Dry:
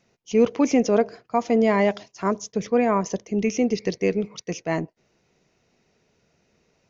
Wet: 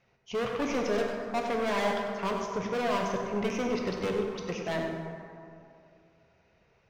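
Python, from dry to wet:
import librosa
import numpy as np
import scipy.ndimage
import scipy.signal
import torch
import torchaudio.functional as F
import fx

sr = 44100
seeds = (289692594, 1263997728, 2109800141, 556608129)

y = scipy.signal.sosfilt(scipy.signal.butter(2, 3000.0, 'lowpass', fs=sr, output='sos'), x)
y = fx.peak_eq(y, sr, hz=260.0, db=-9.5, octaves=1.5)
y = np.clip(10.0 ** (28.0 / 20.0) * y, -1.0, 1.0) / 10.0 ** (28.0 / 20.0)
y = y + 10.0 ** (-9.5 / 20.0) * np.pad(y, (int(98 * sr / 1000.0), 0))[:len(y)]
y = fx.rev_plate(y, sr, seeds[0], rt60_s=2.5, hf_ratio=0.45, predelay_ms=0, drr_db=1.5)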